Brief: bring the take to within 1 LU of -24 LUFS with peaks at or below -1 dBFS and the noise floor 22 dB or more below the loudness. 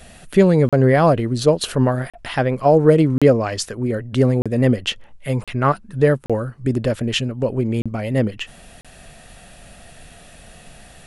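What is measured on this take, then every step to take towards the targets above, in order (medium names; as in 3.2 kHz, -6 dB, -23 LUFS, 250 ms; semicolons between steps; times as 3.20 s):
dropouts 8; longest dropout 36 ms; loudness -18.5 LUFS; peak level -1.5 dBFS; loudness target -24.0 LUFS
-> interpolate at 0.69/2.10/3.18/4.42/5.44/6.26/7.82/8.81 s, 36 ms; trim -5.5 dB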